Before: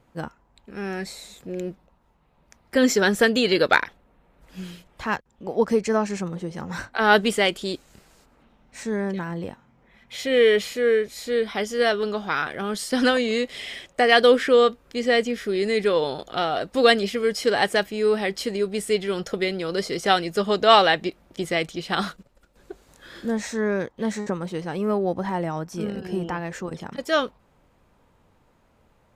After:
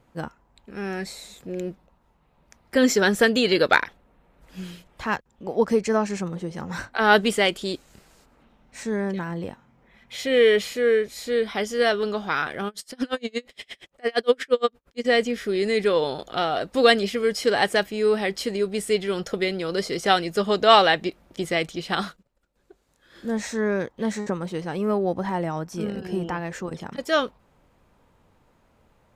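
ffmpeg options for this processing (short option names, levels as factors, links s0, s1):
-filter_complex "[0:a]asplit=3[s0][s1][s2];[s0]afade=t=out:st=12.67:d=0.02[s3];[s1]aeval=exprs='val(0)*pow(10,-37*(0.5-0.5*cos(2*PI*8.6*n/s))/20)':c=same,afade=t=in:st=12.67:d=0.02,afade=t=out:st=15.04:d=0.02[s4];[s2]afade=t=in:st=15.04:d=0.02[s5];[s3][s4][s5]amix=inputs=3:normalize=0,asplit=3[s6][s7][s8];[s6]atrim=end=22.21,asetpts=PTS-STARTPTS,afade=t=out:st=21.93:d=0.28:silence=0.223872[s9];[s7]atrim=start=22.21:end=23.09,asetpts=PTS-STARTPTS,volume=0.224[s10];[s8]atrim=start=23.09,asetpts=PTS-STARTPTS,afade=t=in:d=0.28:silence=0.223872[s11];[s9][s10][s11]concat=n=3:v=0:a=1"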